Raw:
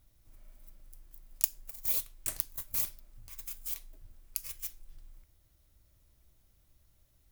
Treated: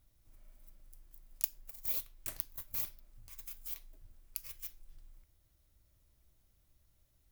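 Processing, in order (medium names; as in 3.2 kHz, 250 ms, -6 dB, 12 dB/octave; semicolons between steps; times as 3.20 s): dynamic bell 8.4 kHz, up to -7 dB, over -52 dBFS, Q 1.1; trim -4 dB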